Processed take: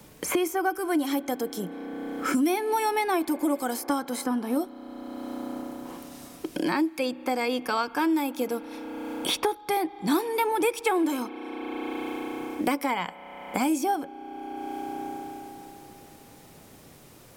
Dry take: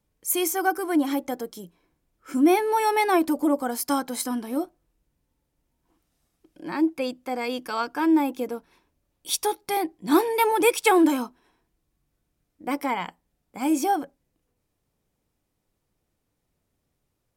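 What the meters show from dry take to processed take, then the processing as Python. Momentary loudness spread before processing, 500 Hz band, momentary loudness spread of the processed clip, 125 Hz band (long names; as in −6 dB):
14 LU, −2.5 dB, 14 LU, can't be measured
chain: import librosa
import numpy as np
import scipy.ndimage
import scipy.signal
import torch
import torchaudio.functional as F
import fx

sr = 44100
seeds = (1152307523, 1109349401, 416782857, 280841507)

y = fx.rev_spring(x, sr, rt60_s=3.2, pass_ms=(32,), chirp_ms=40, drr_db=19.0)
y = fx.band_squash(y, sr, depth_pct=100)
y = y * librosa.db_to_amplitude(-2.5)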